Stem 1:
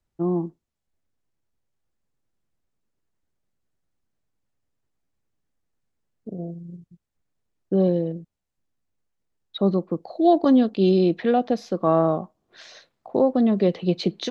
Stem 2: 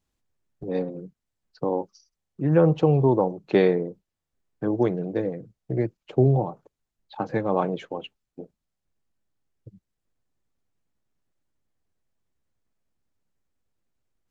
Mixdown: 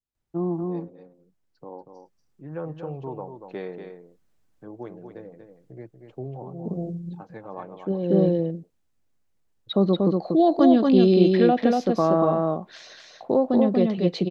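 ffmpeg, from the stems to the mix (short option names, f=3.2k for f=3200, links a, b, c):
-filter_complex "[0:a]dynaudnorm=f=450:g=9:m=9.5dB,alimiter=limit=-7dB:level=0:latency=1:release=137,adelay=150,volume=-3dB,asplit=2[a][b];[b]volume=-3dB[c];[1:a]adynamicequalizer=threshold=0.0178:dfrequency=1100:dqfactor=0.78:tfrequency=1100:tqfactor=0.78:attack=5:release=100:ratio=0.375:range=3:mode=boostabove:tftype=bell,volume=-17dB,asplit=3[d][e][f];[e]volume=-7.5dB[g];[f]apad=whole_len=637343[h];[a][h]sidechaincompress=threshold=-55dB:ratio=10:attack=49:release=264[i];[c][g]amix=inputs=2:normalize=0,aecho=0:1:237:1[j];[i][d][j]amix=inputs=3:normalize=0"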